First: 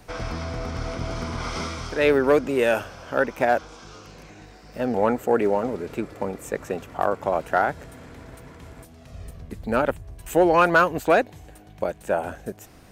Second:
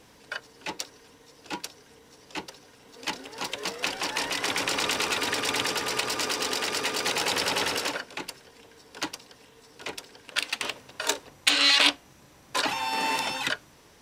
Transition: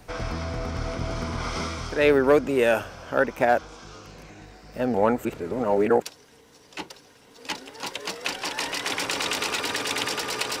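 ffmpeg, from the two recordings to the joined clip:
ffmpeg -i cue0.wav -i cue1.wav -filter_complex "[0:a]apad=whole_dur=10.6,atrim=end=10.6,asplit=2[link_01][link_02];[link_01]atrim=end=5.252[link_03];[link_02]atrim=start=5.248:end=6.022,asetpts=PTS-STARTPTS,areverse[link_04];[1:a]atrim=start=1.598:end=6.18[link_05];[link_03][link_04]acrossfade=duration=0.004:curve1=hsin:curve2=hsin[link_06];[link_06][link_05]acrossfade=duration=0.004:curve1=hsin:curve2=hsin" out.wav

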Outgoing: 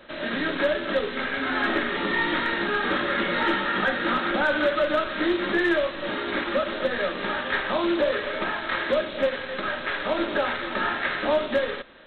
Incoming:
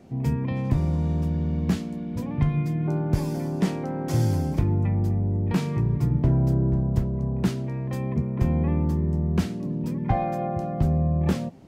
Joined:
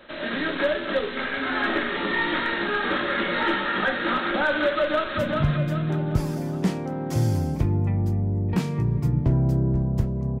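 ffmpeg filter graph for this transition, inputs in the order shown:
ffmpeg -i cue0.wav -i cue1.wav -filter_complex "[0:a]apad=whole_dur=10.4,atrim=end=10.4,atrim=end=5.172[link_01];[1:a]atrim=start=2.148:end=7.38[link_02];[link_01][link_02]acrossfade=duration=0.004:curve1=hsin:curve2=hsin,asplit=2[link_03][link_04];[link_04]afade=type=in:start_time=4.74:duration=0.01,afade=type=out:start_time=5.17:duration=0.01,aecho=0:1:390|780|1170|1560|1950|2340:0.668344|0.300755|0.13534|0.0609028|0.0274063|0.0123328[link_05];[link_03][link_05]amix=inputs=2:normalize=0" out.wav

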